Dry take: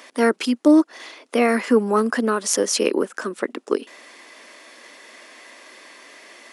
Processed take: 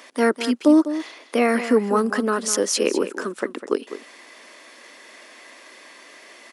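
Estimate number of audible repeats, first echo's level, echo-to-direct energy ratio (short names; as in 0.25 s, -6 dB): 1, -12.0 dB, -12.0 dB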